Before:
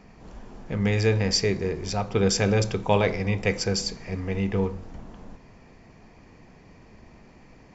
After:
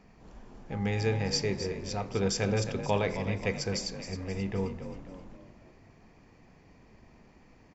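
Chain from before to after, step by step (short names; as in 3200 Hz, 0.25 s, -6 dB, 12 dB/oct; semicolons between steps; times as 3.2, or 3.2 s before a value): 0.7–1.28 whine 810 Hz -36 dBFS; frequency-shifting echo 0.265 s, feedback 45%, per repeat +40 Hz, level -10.5 dB; gain -7 dB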